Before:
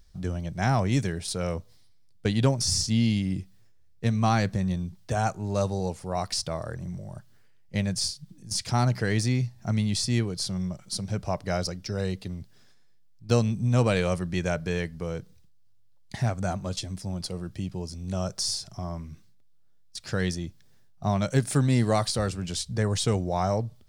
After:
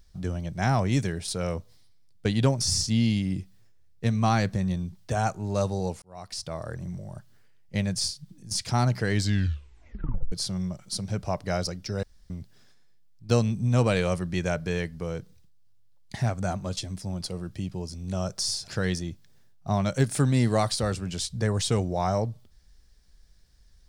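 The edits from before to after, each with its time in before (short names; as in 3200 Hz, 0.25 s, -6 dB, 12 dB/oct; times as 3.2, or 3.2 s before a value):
6.02–6.74 fade in
9.1 tape stop 1.22 s
12.03–12.3 room tone
18.68–20.04 cut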